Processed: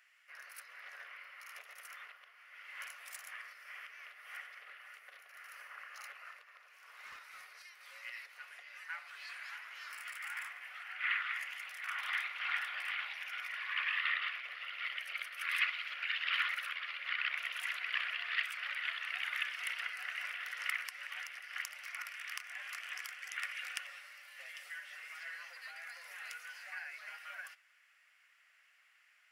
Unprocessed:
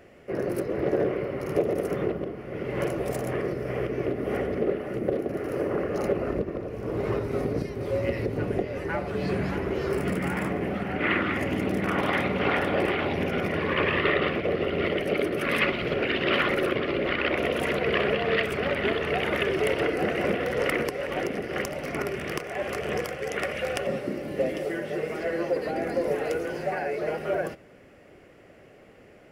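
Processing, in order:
inverse Chebyshev high-pass filter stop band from 310 Hz, stop band 70 dB
0:07.06–0:07.66: hard clipping −40 dBFS, distortion −42 dB
level −6.5 dB

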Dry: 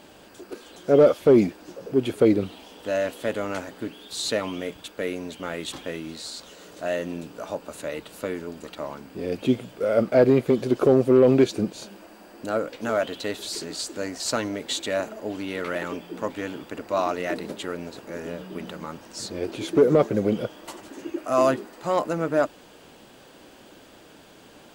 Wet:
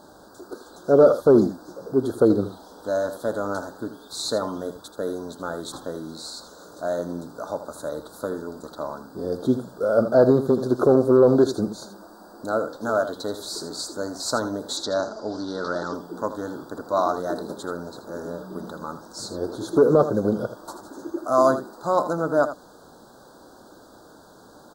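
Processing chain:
Chebyshev band-stop filter 1,500–3,900 Hz, order 3
parametric band 990 Hz +4.5 dB 1.4 octaves
0:14.77–0:15.94: low-pass with resonance 5,200 Hz, resonance Q 3.8
single-tap delay 80 ms −11.5 dB

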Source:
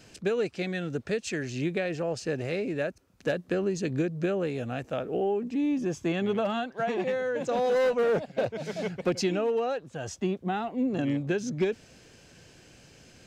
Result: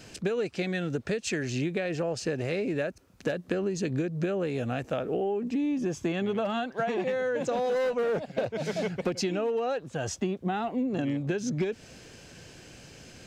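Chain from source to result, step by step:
downward compressor, threshold −31 dBFS, peak gain reduction 9.5 dB
level +5 dB

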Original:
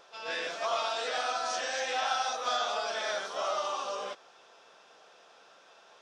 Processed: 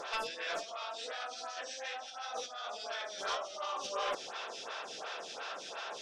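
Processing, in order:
high-shelf EQ 2,800 Hz +11.5 dB
compressor whose output falls as the input rises −41 dBFS, ratio −1
wave folding −30 dBFS
high-frequency loss of the air 70 metres
phaser with staggered stages 2.8 Hz
level +5.5 dB

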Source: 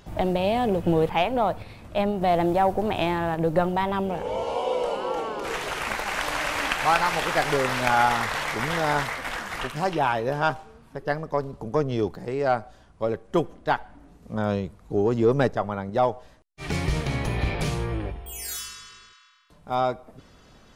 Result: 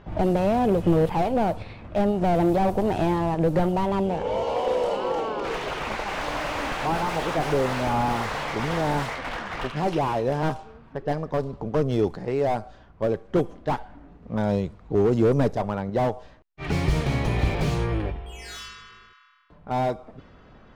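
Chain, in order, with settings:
dynamic equaliser 1,700 Hz, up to −5 dB, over −36 dBFS, Q 1.1
low-pass that shuts in the quiet parts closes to 2,000 Hz, open at −19.5 dBFS
slew-rate limiting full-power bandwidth 46 Hz
level +3 dB

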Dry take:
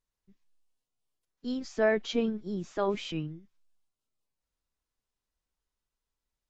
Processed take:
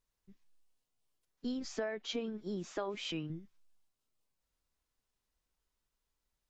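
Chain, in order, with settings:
0:01.77–0:03.30: low-shelf EQ 180 Hz −12 dB
downward compressor 10 to 1, threshold −36 dBFS, peak gain reduction 15.5 dB
level +2 dB

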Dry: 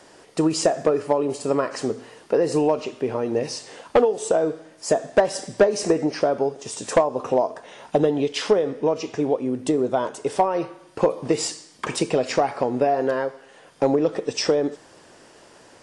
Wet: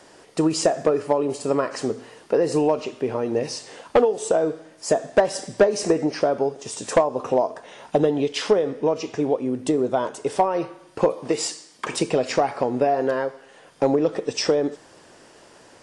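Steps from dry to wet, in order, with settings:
0:11.13–0:11.93: low-shelf EQ 160 Hz −11.5 dB

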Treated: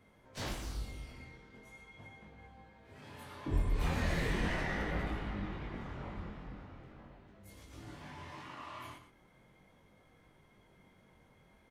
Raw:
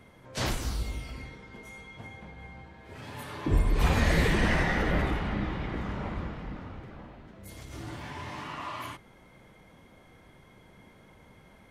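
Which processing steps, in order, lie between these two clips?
stylus tracing distortion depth 0.023 ms
chorus effect 0.39 Hz, delay 19 ms, depth 5 ms
single-tap delay 117 ms −10.5 dB
level −6.5 dB

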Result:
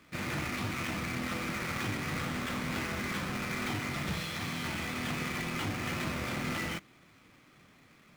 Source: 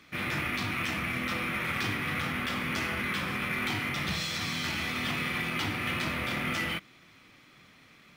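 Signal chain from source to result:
each half-wave held at its own peak
high-shelf EQ 5,700 Hz −7.5 dB
level −6.5 dB

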